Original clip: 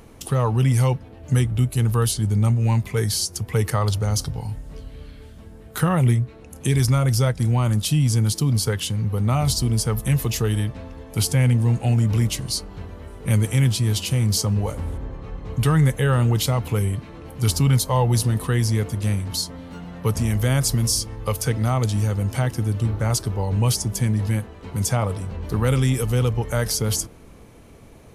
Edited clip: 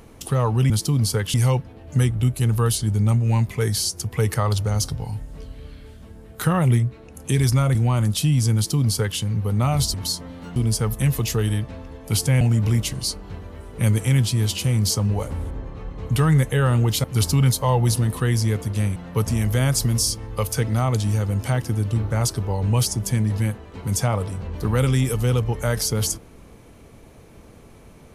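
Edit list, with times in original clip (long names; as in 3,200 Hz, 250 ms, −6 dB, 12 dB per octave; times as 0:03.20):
0:07.11–0:07.43: remove
0:08.23–0:08.87: duplicate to 0:00.70
0:11.47–0:11.88: remove
0:16.51–0:17.31: remove
0:19.23–0:19.85: move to 0:09.62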